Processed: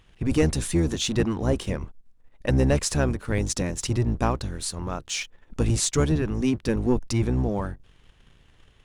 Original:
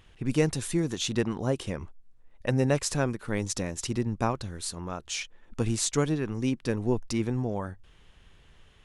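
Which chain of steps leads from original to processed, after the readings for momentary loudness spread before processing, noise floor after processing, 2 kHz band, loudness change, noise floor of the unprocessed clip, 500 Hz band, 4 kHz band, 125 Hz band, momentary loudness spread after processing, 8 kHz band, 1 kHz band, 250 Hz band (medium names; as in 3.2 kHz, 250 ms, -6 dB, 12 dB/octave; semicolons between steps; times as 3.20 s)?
9 LU, -57 dBFS, +3.0 dB, +4.0 dB, -57 dBFS, +3.0 dB, +3.5 dB, +5.0 dB, 9 LU, +3.5 dB, +2.5 dB, +4.0 dB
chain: octave divider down 1 oct, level -1 dB; waveshaping leveller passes 1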